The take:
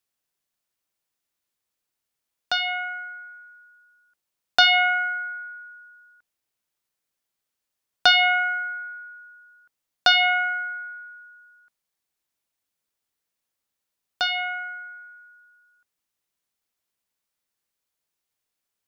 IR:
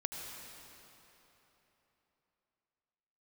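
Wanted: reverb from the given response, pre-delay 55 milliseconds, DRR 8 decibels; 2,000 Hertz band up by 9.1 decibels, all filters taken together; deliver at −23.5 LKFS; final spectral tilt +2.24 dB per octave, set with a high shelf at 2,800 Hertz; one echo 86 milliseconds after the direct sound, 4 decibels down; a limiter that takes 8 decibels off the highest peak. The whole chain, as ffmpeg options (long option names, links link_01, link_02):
-filter_complex "[0:a]equalizer=frequency=2000:width_type=o:gain=9,highshelf=frequency=2800:gain=9,alimiter=limit=-7dB:level=0:latency=1,aecho=1:1:86:0.631,asplit=2[link_01][link_02];[1:a]atrim=start_sample=2205,adelay=55[link_03];[link_02][link_03]afir=irnorm=-1:irlink=0,volume=-9dB[link_04];[link_01][link_04]amix=inputs=2:normalize=0,volume=-8dB"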